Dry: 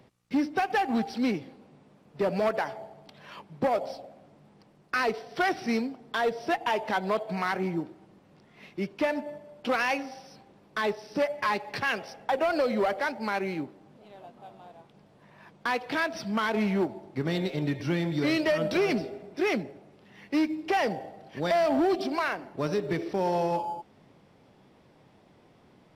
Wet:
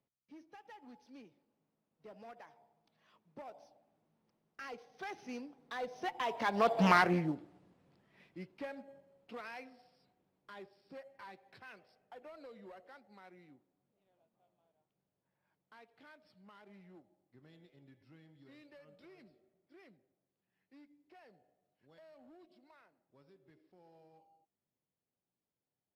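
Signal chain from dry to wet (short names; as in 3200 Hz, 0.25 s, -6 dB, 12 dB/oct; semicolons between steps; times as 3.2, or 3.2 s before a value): Doppler pass-by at 6.87, 24 m/s, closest 3.3 m; Doppler distortion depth 0.3 ms; gain +5 dB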